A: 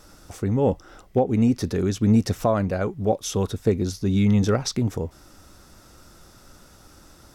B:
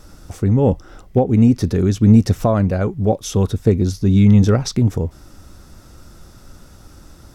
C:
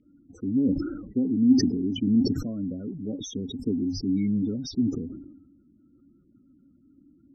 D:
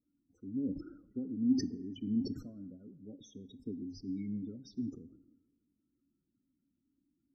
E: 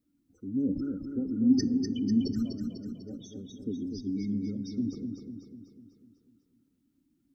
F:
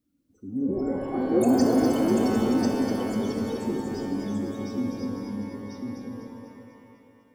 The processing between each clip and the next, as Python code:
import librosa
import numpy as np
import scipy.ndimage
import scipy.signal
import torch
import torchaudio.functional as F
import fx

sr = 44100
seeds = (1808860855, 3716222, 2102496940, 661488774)

y1 = fx.low_shelf(x, sr, hz=240.0, db=9.0)
y1 = y1 * librosa.db_to_amplitude(2.0)
y2 = fx.spec_topn(y1, sr, count=16)
y2 = fx.vowel_filter(y2, sr, vowel='i')
y2 = fx.sustainer(y2, sr, db_per_s=53.0)
y3 = fx.rev_plate(y2, sr, seeds[0], rt60_s=1.5, hf_ratio=0.4, predelay_ms=0, drr_db=15.5)
y3 = fx.upward_expand(y3, sr, threshold_db=-40.0, expansion=1.5)
y3 = y3 * librosa.db_to_amplitude(-9.0)
y4 = fx.echo_feedback(y3, sr, ms=248, feedback_pct=53, wet_db=-6.0)
y4 = y4 * librosa.db_to_amplitude(6.5)
y5 = y4 + 10.0 ** (-3.5 / 20.0) * np.pad(y4, (int(1044 * sr / 1000.0), 0))[:len(y4)]
y5 = fx.echo_pitch(y5, sr, ms=309, semitones=6, count=3, db_per_echo=-3.0)
y5 = fx.rev_shimmer(y5, sr, seeds[1], rt60_s=2.2, semitones=12, shimmer_db=-8, drr_db=3.0)